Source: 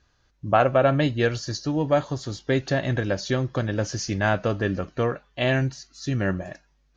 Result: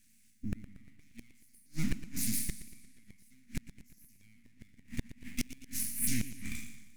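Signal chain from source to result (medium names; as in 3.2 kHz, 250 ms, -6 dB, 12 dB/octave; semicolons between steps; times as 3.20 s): spectral sustain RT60 0.69 s; peak limiter -13 dBFS, peak gain reduction 7.5 dB; bass shelf 480 Hz -10.5 dB; full-wave rectifier; FFT filter 160 Hz 0 dB, 240 Hz +13 dB, 430 Hz -28 dB, 790 Hz -29 dB, 1.2 kHz -25 dB, 2.2 kHz +1 dB, 3.1 kHz -9 dB, 4.5 kHz -6 dB, 9.8 kHz +9 dB; inverted gate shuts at -21 dBFS, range -37 dB; modulated delay 117 ms, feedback 54%, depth 110 cents, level -14 dB; trim +3.5 dB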